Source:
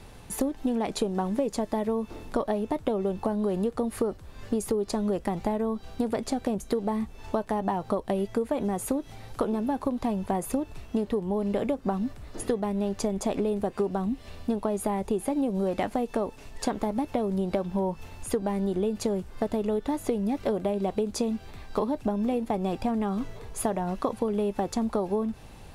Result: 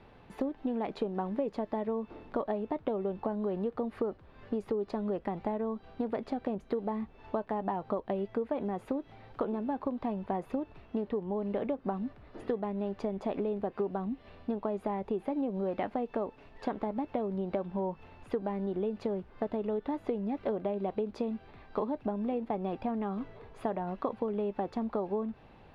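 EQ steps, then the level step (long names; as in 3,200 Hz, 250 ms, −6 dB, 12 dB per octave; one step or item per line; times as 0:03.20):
high-frequency loss of the air 360 metres
low-shelf EQ 130 Hz −11.5 dB
−3.0 dB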